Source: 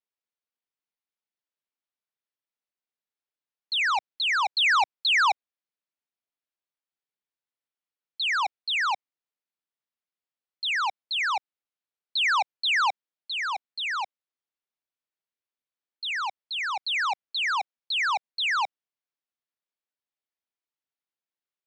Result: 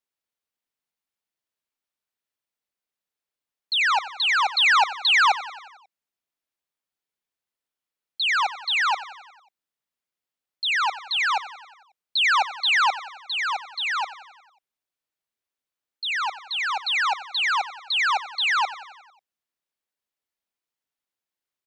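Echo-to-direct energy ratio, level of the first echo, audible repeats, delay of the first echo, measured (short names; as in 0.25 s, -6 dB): -13.5 dB, -15.5 dB, 5, 90 ms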